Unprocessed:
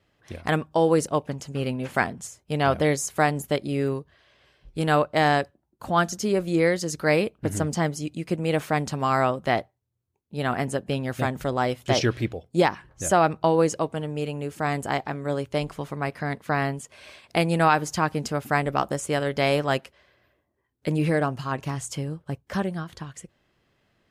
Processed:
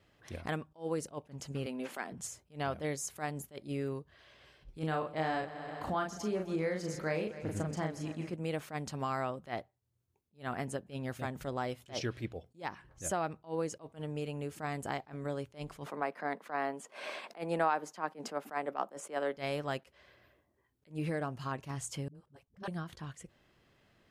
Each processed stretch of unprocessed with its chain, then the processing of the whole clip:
0:01.66–0:02.12: high-pass filter 230 Hz 24 dB per octave + downward compressor 1.5 to 1, threshold −27 dBFS
0:04.79–0:08.34: high-shelf EQ 4,900 Hz −9 dB + double-tracking delay 38 ms −3.5 dB + echo machine with several playback heads 129 ms, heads first and second, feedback 62%, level −22.5 dB
0:15.86–0:19.37: Butterworth high-pass 170 Hz 48 dB per octave + parametric band 790 Hz +12 dB 3 octaves
0:22.08–0:22.68: dynamic equaliser 3,600 Hz, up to +5 dB, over −49 dBFS, Q 0.9 + output level in coarse steps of 24 dB + all-pass dispersion highs, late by 69 ms, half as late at 360 Hz
whole clip: downward compressor 2.5 to 1, threshold −38 dBFS; level that may rise only so fast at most 260 dB per second

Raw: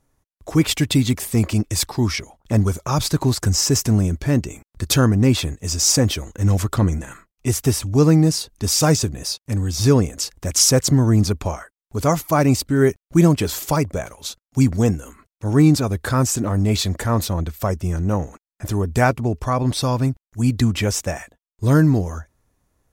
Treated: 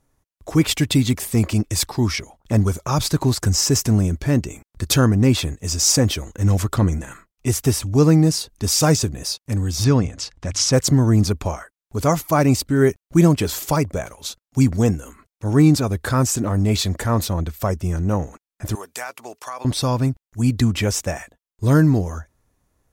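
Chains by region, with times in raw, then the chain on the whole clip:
0:09.84–0:10.73: low-pass filter 5,200 Hz + parametric band 410 Hz −5.5 dB 0.74 octaves + mains-hum notches 50/100 Hz
0:18.75–0:19.65: high-pass filter 830 Hz + high-shelf EQ 4,200 Hz +6 dB + downward compressor 4 to 1, threshold −27 dBFS
whole clip: no processing

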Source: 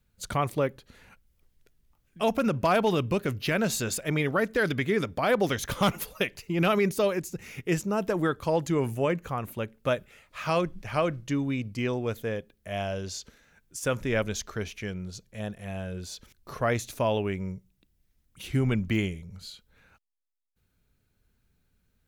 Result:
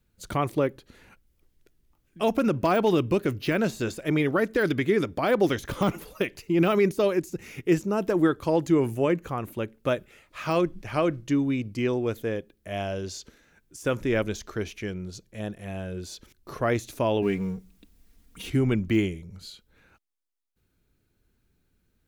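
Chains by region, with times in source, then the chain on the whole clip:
0:17.22–0:18.50: mu-law and A-law mismatch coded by mu + comb filter 4.3 ms, depth 66%
whole clip: de-essing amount 80%; parametric band 330 Hz +8 dB 0.59 octaves

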